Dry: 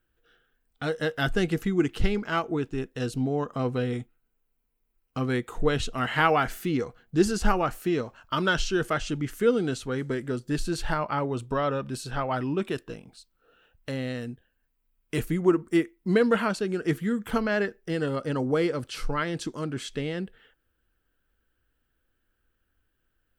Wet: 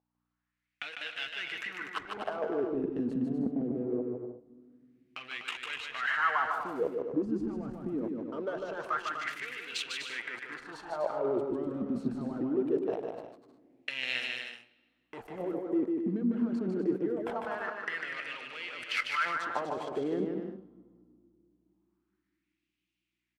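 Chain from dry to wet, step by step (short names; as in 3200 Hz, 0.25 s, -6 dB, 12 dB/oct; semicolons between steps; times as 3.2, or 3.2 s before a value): spectral repair 3.26–4.12, 860–11000 Hz; low shelf 230 Hz -5 dB; harmonic-percussive split harmonic -7 dB; low shelf 94 Hz +11 dB; sample leveller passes 5; in parallel at 0 dB: negative-ratio compressor -21 dBFS, ratio -0.5; on the sum: power-law curve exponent 2; requantised 12-bit, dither triangular; hum 60 Hz, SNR 30 dB; wah 0.23 Hz 230–2700 Hz, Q 4.3; bouncing-ball echo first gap 0.15 s, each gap 0.65×, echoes 5; on a send at -20 dB: reverb RT60 2.4 s, pre-delay 4 ms; on the sum: gain -3.5 dB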